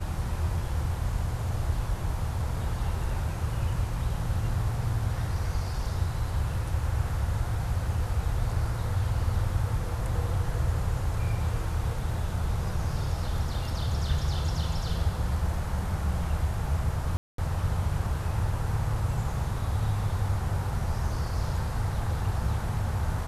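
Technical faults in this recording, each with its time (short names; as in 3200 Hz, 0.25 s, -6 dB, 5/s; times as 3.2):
17.17–17.38 gap 0.213 s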